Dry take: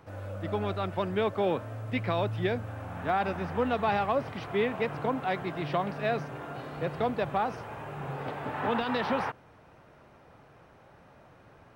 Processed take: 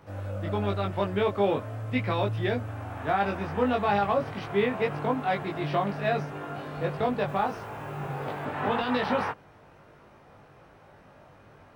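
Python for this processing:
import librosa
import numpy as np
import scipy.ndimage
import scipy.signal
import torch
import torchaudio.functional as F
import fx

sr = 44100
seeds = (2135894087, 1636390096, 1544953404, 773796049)

y = fx.doubler(x, sr, ms=20.0, db=-2)
y = fx.quant_dither(y, sr, seeds[0], bits=10, dither='none', at=(7.28, 8.45))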